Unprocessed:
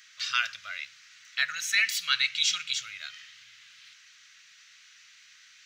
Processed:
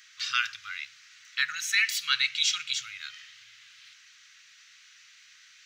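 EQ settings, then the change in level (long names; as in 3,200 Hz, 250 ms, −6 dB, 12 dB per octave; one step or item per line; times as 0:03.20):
linear-phase brick-wall band-stop 170–1,000 Hz
0.0 dB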